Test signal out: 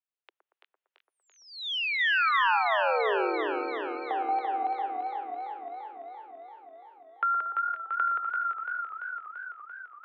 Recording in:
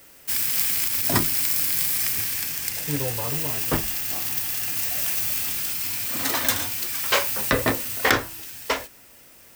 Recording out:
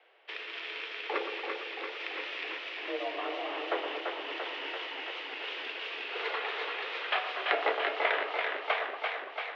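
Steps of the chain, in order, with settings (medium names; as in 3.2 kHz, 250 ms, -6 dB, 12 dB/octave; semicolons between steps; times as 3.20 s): compression, threshold -23 dBFS; random-step tremolo 3.5 Hz; two-band feedback delay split 1.3 kHz, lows 116 ms, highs 358 ms, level -7 dB; mistuned SSB +180 Hz 180–3200 Hz; modulated delay 338 ms, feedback 68%, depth 54 cents, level -5 dB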